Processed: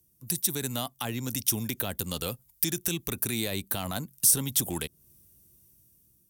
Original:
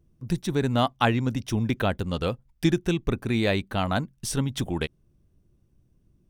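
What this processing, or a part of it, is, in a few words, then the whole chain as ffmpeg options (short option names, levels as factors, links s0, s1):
FM broadcast chain: -filter_complex "[0:a]highpass=59,dynaudnorm=f=470:g=5:m=2.82,acrossover=split=240|1100[s0][s1][s2];[s0]acompressor=threshold=0.0631:ratio=4[s3];[s1]acompressor=threshold=0.0708:ratio=4[s4];[s2]acompressor=threshold=0.0251:ratio=4[s5];[s3][s4][s5]amix=inputs=3:normalize=0,aemphasis=mode=production:type=75fm,alimiter=limit=0.188:level=0:latency=1:release=24,asoftclip=type=hard:threshold=0.168,lowpass=f=15000:w=0.5412,lowpass=f=15000:w=1.3066,aemphasis=mode=production:type=75fm,volume=0.422"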